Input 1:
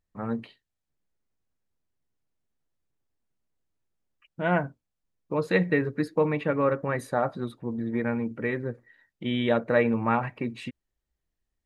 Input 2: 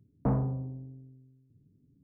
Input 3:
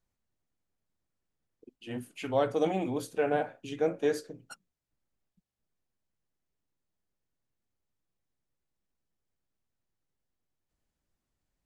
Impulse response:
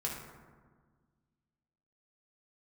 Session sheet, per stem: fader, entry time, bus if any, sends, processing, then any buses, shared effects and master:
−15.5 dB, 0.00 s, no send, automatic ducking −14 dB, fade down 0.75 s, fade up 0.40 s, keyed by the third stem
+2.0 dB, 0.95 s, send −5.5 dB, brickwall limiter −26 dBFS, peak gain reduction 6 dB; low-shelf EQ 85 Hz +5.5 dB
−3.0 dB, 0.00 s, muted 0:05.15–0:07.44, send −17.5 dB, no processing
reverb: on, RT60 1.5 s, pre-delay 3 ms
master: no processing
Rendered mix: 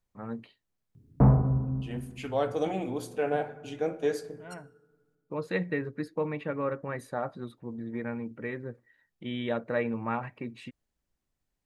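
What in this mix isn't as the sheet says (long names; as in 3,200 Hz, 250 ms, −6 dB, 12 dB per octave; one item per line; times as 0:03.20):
stem 1 −15.5 dB → −7.0 dB
stem 2: missing brickwall limiter −26 dBFS, peak gain reduction 6 dB
stem 3: send −17.5 dB → −11.5 dB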